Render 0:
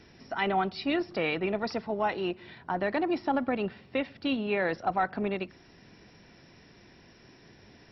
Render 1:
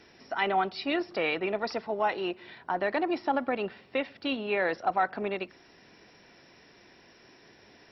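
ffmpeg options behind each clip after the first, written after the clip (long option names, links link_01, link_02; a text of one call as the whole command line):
ffmpeg -i in.wav -af "bass=frequency=250:gain=-11,treble=frequency=4000:gain=-1,volume=1.5dB" out.wav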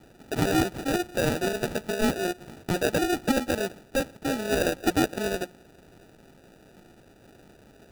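ffmpeg -i in.wav -af "acrusher=samples=41:mix=1:aa=0.000001,volume=3.5dB" out.wav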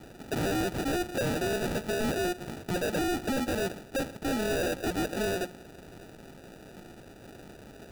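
ffmpeg -i in.wav -filter_complex "[0:a]asplit=2[link_01][link_02];[link_02]alimiter=limit=-24dB:level=0:latency=1,volume=-2dB[link_03];[link_01][link_03]amix=inputs=2:normalize=0,asoftclip=type=hard:threshold=-27dB" out.wav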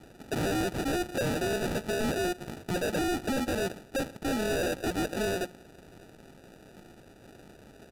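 ffmpeg -i in.wav -af "aresample=32000,aresample=44100,aeval=exprs='0.0562*(cos(1*acos(clip(val(0)/0.0562,-1,1)))-cos(1*PI/2))+0.00316*(cos(7*acos(clip(val(0)/0.0562,-1,1)))-cos(7*PI/2))':channel_layout=same" out.wav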